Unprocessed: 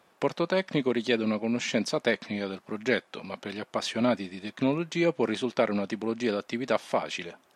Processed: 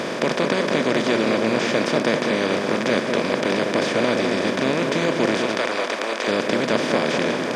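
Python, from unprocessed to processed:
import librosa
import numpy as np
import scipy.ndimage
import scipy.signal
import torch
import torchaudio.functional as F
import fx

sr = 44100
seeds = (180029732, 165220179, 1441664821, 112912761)

y = fx.bin_compress(x, sr, power=0.2)
y = fx.highpass(y, sr, hz=570.0, slope=12, at=(5.4, 6.28))
y = fx.echo_filtered(y, sr, ms=204, feedback_pct=39, hz=2000.0, wet_db=-4.5)
y = y * 10.0 ** (-3.0 / 20.0)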